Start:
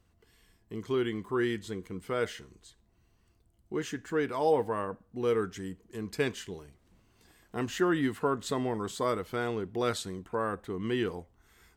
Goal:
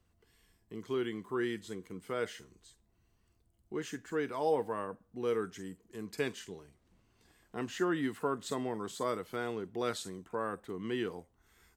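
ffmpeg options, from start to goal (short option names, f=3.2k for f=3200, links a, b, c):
-filter_complex "[0:a]asettb=1/sr,asplit=3[a][b][c];[a]atrim=end=6.394[d];[b]atrim=start=6.39:end=7.98,asetpts=PTS-STARTPTS,afade=t=in:d=0.004:c=qsin,afade=t=out:st=1.586:d=0.004:c=qsin,highshelf=f=11k:g=-7.5[e];[c]atrim=start=7.976[f];[d][e]acrossfade=d=0.004:c1=hsin:c2=qsin[g];[g][f]acrossfade=d=0.004:c1=qsin:c2=hsin,acrossover=split=120|5300[h][i][j];[h]acompressor=threshold=-60dB:ratio=6[k];[j]asplit=2[l][m];[m]adelay=46,volume=-3.5dB[n];[l][n]amix=inputs=2:normalize=0[o];[k][i][o]amix=inputs=3:normalize=0,volume=-4.5dB"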